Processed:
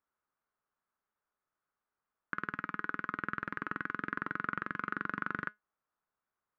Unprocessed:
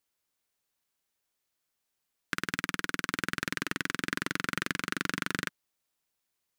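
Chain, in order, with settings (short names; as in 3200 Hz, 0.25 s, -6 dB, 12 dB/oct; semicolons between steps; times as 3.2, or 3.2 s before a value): limiter -14 dBFS, peak gain reduction 5.5 dB; synth low-pass 1300 Hz, resonance Q 2.7; resonator 210 Hz, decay 0.17 s, harmonics all, mix 40%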